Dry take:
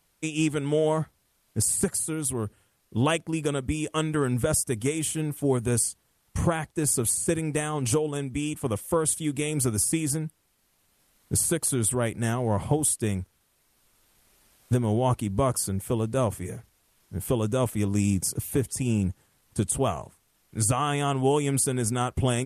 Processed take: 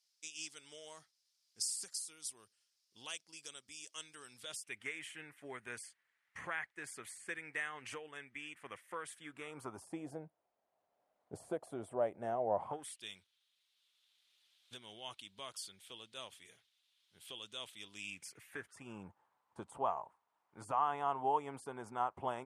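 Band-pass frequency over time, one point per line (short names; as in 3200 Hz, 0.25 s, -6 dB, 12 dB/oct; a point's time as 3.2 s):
band-pass, Q 3.8
4.32 s 5100 Hz
4.81 s 1900 Hz
9.07 s 1900 Hz
10.02 s 670 Hz
12.56 s 670 Hz
13.03 s 3500 Hz
17.89 s 3500 Hz
19.09 s 930 Hz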